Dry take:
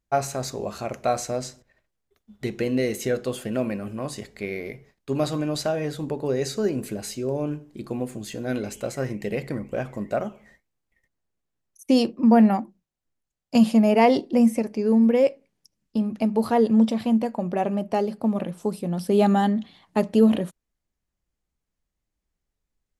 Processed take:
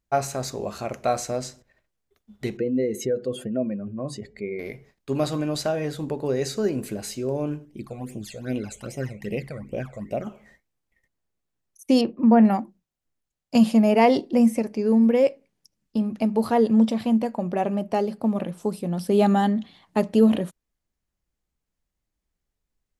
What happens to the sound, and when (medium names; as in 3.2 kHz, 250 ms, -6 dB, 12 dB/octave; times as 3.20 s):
2.57–4.59 s: spectral contrast enhancement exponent 1.7
7.65–10.27 s: phase shifter stages 12, 2.5 Hz, lowest notch 280–1500 Hz
12.01–12.45 s: low-pass 2.4 kHz